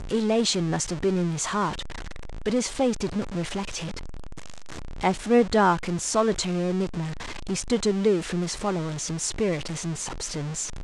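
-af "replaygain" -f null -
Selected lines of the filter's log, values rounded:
track_gain = +5.2 dB
track_peak = 0.278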